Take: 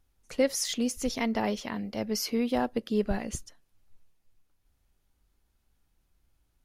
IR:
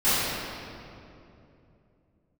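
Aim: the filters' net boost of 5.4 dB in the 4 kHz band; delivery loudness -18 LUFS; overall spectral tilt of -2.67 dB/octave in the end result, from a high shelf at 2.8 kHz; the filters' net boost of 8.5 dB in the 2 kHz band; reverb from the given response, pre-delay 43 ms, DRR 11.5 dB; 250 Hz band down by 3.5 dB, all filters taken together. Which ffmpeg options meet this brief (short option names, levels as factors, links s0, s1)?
-filter_complex "[0:a]equalizer=f=250:t=o:g=-4,equalizer=f=2000:t=o:g=9,highshelf=f=2800:g=-4,equalizer=f=4000:t=o:g=8.5,asplit=2[s0][s1];[1:a]atrim=start_sample=2205,adelay=43[s2];[s1][s2]afir=irnorm=-1:irlink=0,volume=0.0335[s3];[s0][s3]amix=inputs=2:normalize=0,volume=3.55"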